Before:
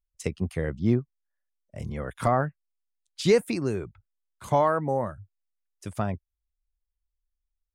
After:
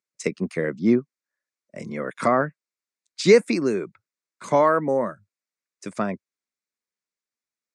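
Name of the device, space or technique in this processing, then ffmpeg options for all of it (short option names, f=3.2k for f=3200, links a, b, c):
television speaker: -af "highpass=f=190:w=0.5412,highpass=f=190:w=1.3066,equalizer=f=790:t=q:w=4:g=-9,equalizer=f=2.2k:t=q:w=4:g=4,equalizer=f=3.1k:t=q:w=4:g=-10,lowpass=f=8.2k:w=0.5412,lowpass=f=8.2k:w=1.3066,volume=6.5dB"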